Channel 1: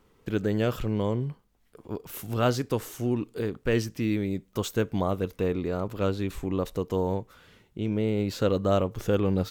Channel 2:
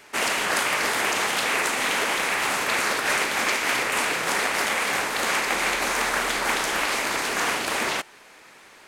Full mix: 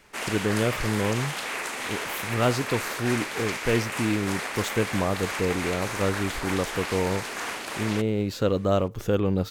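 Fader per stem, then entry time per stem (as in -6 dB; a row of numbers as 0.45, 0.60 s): +1.0, -8.0 dB; 0.00, 0.00 s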